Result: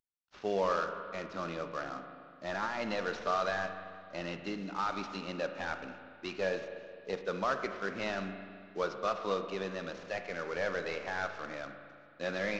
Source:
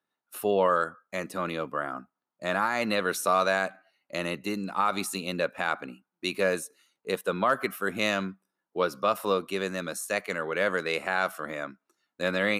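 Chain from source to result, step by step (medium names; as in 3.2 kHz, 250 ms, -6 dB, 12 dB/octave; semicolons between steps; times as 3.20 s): CVSD coder 32 kbps; spring tank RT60 2.2 s, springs 35/42 ms, chirp 45 ms, DRR 7 dB; trim -7 dB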